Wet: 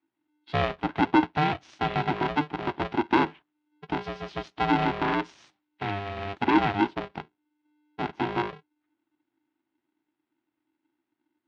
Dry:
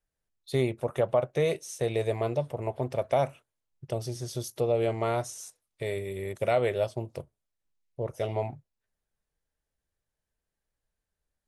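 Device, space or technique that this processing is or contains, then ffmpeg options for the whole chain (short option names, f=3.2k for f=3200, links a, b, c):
ring modulator pedal into a guitar cabinet: -af "aeval=exprs='val(0)*sgn(sin(2*PI*300*n/s))':c=same,highpass=91,equalizer=f=190:t=q:w=4:g=-6,equalizer=f=320:t=q:w=4:g=7,equalizer=f=470:t=q:w=4:g=-8,lowpass=f=3.5k:w=0.5412,lowpass=f=3.5k:w=1.3066,volume=2.5dB"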